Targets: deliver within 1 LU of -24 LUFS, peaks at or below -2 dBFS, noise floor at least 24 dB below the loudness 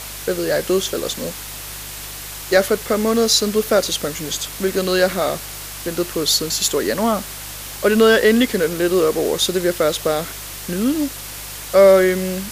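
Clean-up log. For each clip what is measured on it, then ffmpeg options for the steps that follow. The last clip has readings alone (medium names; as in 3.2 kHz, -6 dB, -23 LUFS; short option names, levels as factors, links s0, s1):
hum 50 Hz; highest harmonic 150 Hz; hum level -38 dBFS; noise floor -32 dBFS; noise floor target -42 dBFS; loudness -18.0 LUFS; peak level -3.0 dBFS; loudness target -24.0 LUFS
-> -af "bandreject=f=50:t=h:w=4,bandreject=f=100:t=h:w=4,bandreject=f=150:t=h:w=4"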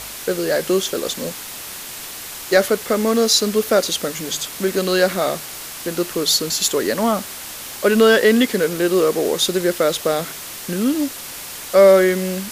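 hum not found; noise floor -33 dBFS; noise floor target -42 dBFS
-> -af "afftdn=nr=9:nf=-33"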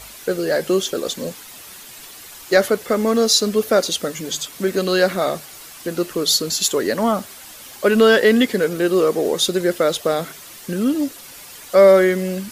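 noise floor -40 dBFS; noise floor target -42 dBFS
-> -af "afftdn=nr=6:nf=-40"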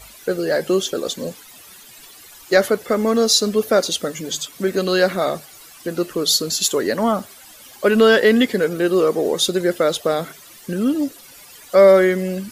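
noise floor -44 dBFS; loudness -18.0 LUFS; peak level -3.0 dBFS; loudness target -24.0 LUFS
-> -af "volume=0.501"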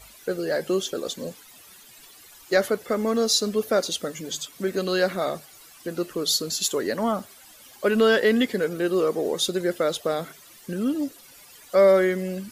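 loudness -24.0 LUFS; peak level -9.0 dBFS; noise floor -50 dBFS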